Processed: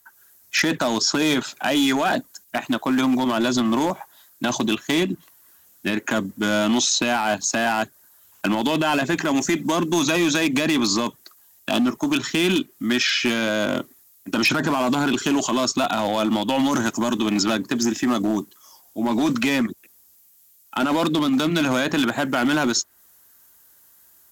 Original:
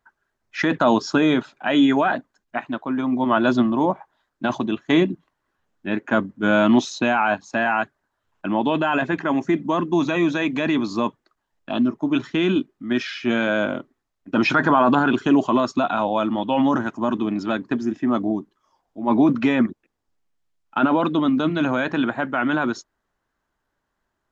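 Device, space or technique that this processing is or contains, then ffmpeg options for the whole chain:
FM broadcast chain: -filter_complex "[0:a]highpass=f=47:w=0.5412,highpass=f=47:w=1.3066,dynaudnorm=f=100:g=3:m=6dB,acrossover=split=730|3100[a][b][c];[a]acompressor=threshold=-18dB:ratio=4[d];[b]acompressor=threshold=-28dB:ratio=4[e];[c]acompressor=threshold=-43dB:ratio=4[f];[d][e][f]amix=inputs=3:normalize=0,aemphasis=mode=production:type=75fm,alimiter=limit=-14dB:level=0:latency=1:release=74,asoftclip=type=hard:threshold=-17.5dB,lowpass=f=15k:w=0.5412,lowpass=f=15k:w=1.3066,aemphasis=mode=production:type=75fm,volume=3dB"

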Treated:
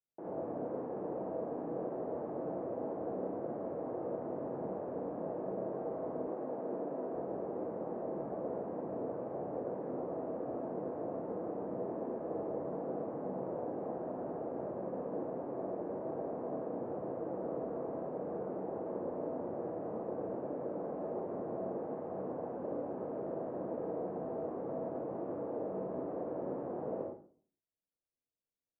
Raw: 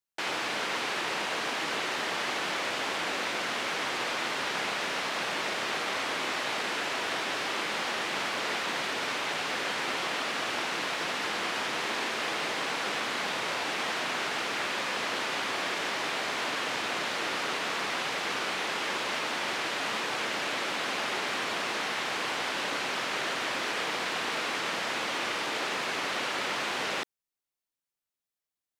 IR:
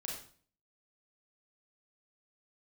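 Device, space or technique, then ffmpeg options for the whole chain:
next room: -filter_complex "[0:a]lowpass=f=630:w=0.5412,lowpass=f=630:w=1.3066[a];[1:a]atrim=start_sample=2205[b];[a][b]afir=irnorm=-1:irlink=0,asettb=1/sr,asplit=3[c][d][e];[c]atrim=end=6.274[f];[d]atrim=start=6.27:end=7.16,asetpts=PTS-STARTPTS,afade=t=in:d=0.004:c=qsin,afade=t=out:st=0.886:d=0.004:c=qsin,highpass=150[g];[e]atrim=start=7.156[h];[f][g]acrossfade=d=0.004:c1=hsin:c2=qsin[i];[i][h]acrossfade=d=0.004:c1=qsin:c2=hsin,volume=1.5dB"

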